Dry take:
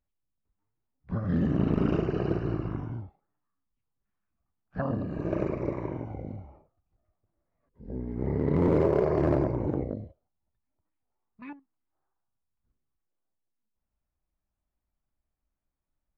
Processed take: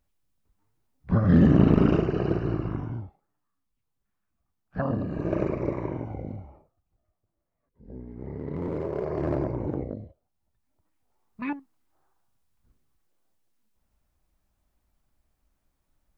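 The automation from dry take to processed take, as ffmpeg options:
-af "volume=28.5dB,afade=t=out:st=1.47:d=0.62:silence=0.473151,afade=t=out:st=6.23:d=1.99:silence=0.298538,afade=t=in:st=8.85:d=0.68:silence=0.446684,afade=t=in:st=10.04:d=1.4:silence=0.237137"

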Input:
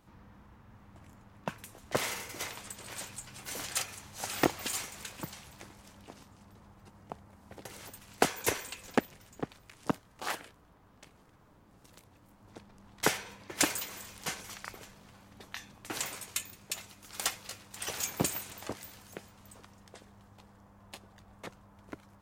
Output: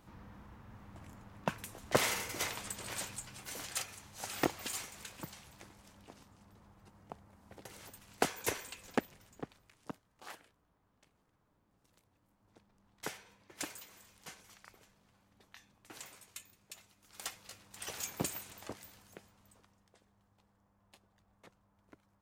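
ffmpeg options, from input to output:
-af "volume=10dB,afade=t=out:st=2.9:d=0.65:silence=0.446684,afade=t=out:st=9.2:d=0.69:silence=0.354813,afade=t=in:st=16.97:d=0.82:silence=0.398107,afade=t=out:st=18.74:d=1.14:silence=0.354813"

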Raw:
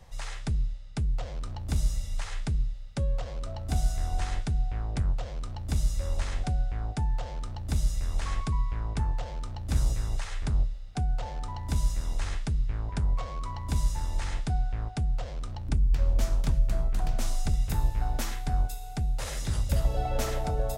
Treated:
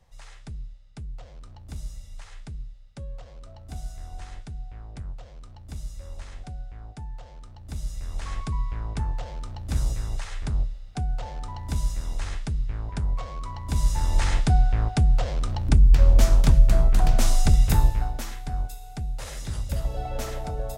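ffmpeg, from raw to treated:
-af "volume=9dB,afade=t=in:st=7.56:d=1.08:silence=0.334965,afade=t=in:st=13.66:d=0.55:silence=0.375837,afade=t=out:st=17.74:d=0.4:silence=0.281838"

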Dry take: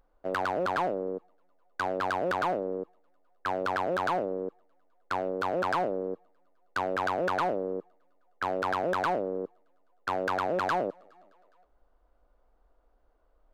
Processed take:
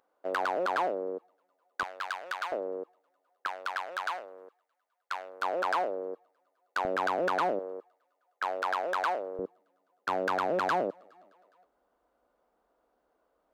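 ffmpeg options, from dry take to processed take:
-af "asetnsamples=n=441:p=0,asendcmd='1.83 highpass f 1400;2.52 highpass f 430;3.47 highpass f 1200;5.42 highpass f 470;6.85 highpass f 220;7.59 highpass f 610;9.39 highpass f 160',highpass=350"

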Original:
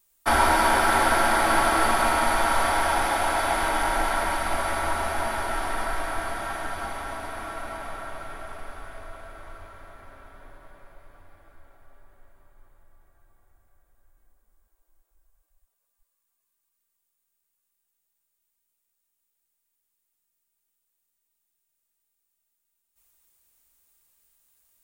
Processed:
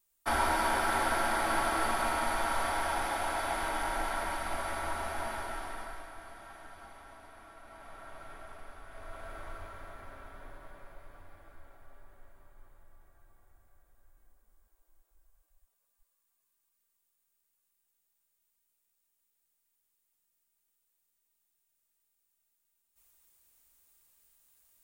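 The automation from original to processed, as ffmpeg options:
-af "volume=8.5dB,afade=t=out:st=5.32:d=0.79:silence=0.334965,afade=t=in:st=7.63:d=0.68:silence=0.375837,afade=t=in:st=8.87:d=0.47:silence=0.354813"

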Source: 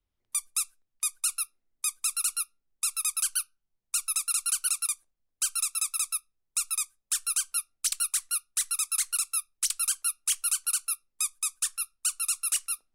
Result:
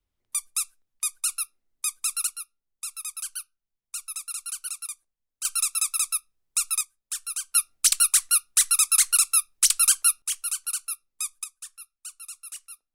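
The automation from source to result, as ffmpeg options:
-af "asetnsamples=n=441:p=0,asendcmd='2.27 volume volume -6dB;5.45 volume volume 4dB;6.81 volume volume -3.5dB;7.55 volume volume 8.5dB;10.22 volume volume -1.5dB;11.44 volume volume -12dB',volume=1.5dB"

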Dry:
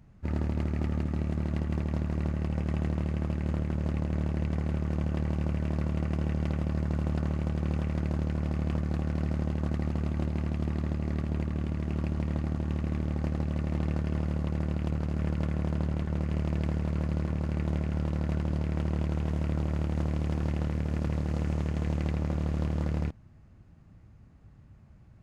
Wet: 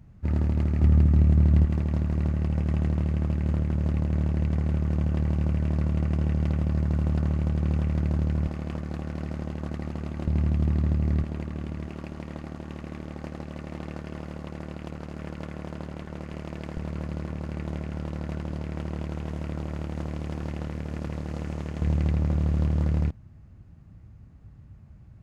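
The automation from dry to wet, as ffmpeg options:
-af "asetnsamples=n=441:p=0,asendcmd='0.82 equalizer g 13.5;1.65 equalizer g 5.5;8.47 equalizer g -4;10.27 equalizer g 8;11.23 equalizer g -3;11.87 equalizer g -10.5;16.77 equalizer g -4;21.81 equalizer g 6.5',equalizer=f=78:t=o:w=2.8:g=6.5"

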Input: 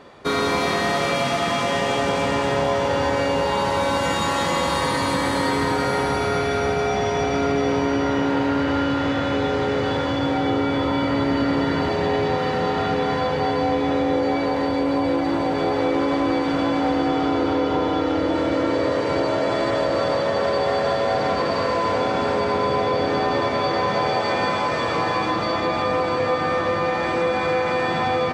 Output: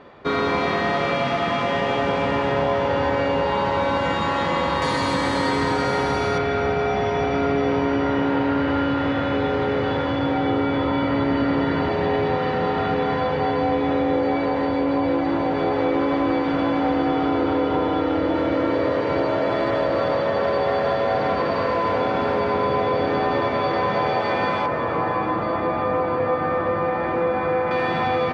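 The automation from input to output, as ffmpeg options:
-af "asetnsamples=n=441:p=0,asendcmd='4.82 lowpass f 6700;6.38 lowpass f 3200;24.66 lowpass f 1700;27.71 lowpass f 3600',lowpass=3.1k"

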